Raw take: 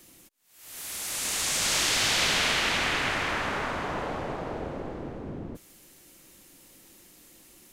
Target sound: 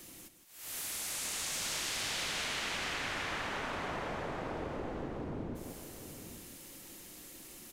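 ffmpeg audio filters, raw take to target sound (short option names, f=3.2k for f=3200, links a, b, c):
-filter_complex "[0:a]asplit=2[a][b];[b]aecho=0:1:164:0.316[c];[a][c]amix=inputs=2:normalize=0,acompressor=threshold=-40dB:ratio=4,asplit=2[d][e];[e]aecho=0:1:817:0.335[f];[d][f]amix=inputs=2:normalize=0,volume=2.5dB"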